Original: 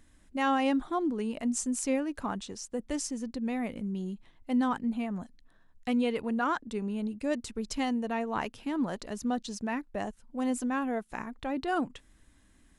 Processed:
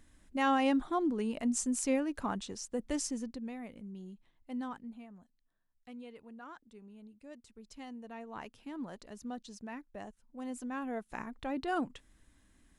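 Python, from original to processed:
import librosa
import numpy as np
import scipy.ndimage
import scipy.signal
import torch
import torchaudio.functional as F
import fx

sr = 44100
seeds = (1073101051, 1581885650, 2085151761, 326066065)

y = fx.gain(x, sr, db=fx.line((3.16, -1.5), (3.57, -11.5), (4.65, -11.5), (5.22, -20.0), (7.39, -20.0), (8.55, -11.0), (10.48, -11.0), (11.16, -3.5)))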